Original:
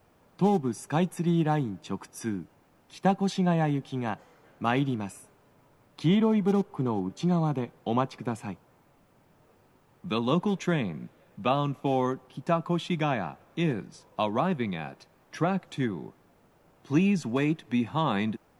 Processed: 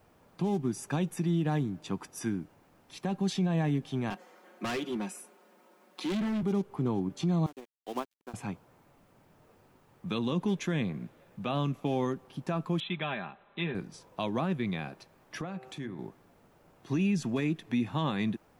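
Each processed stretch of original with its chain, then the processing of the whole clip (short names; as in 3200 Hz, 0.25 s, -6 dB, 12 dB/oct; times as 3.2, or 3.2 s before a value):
4.1–6.43 steep high-pass 210 Hz 48 dB/oct + comb 5.5 ms, depth 79% + hard clip -28 dBFS
7.46–8.34 HPF 270 Hz 24 dB/oct + sample gate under -36 dBFS + upward expander 2.5:1, over -43 dBFS
12.8–13.75 brick-wall FIR low-pass 4100 Hz + low shelf 490 Hz -11 dB + comb 5 ms, depth 51%
15.41–15.99 de-hum 128.6 Hz, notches 25 + compressor 2:1, threshold -42 dBFS + HPF 41 Hz
whole clip: dynamic EQ 860 Hz, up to -6 dB, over -40 dBFS, Q 0.94; limiter -21 dBFS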